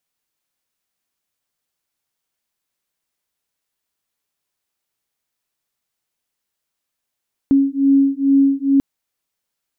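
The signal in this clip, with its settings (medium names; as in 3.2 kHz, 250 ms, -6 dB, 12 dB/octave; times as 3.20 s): beating tones 274 Hz, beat 2.3 Hz, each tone -14.5 dBFS 1.29 s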